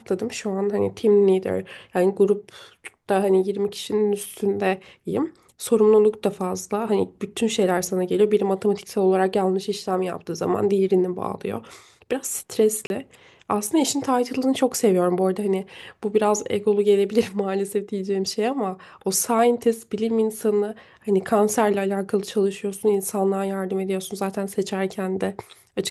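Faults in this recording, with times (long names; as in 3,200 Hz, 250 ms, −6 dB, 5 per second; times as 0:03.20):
0:12.87–0:12.90: drop-out 31 ms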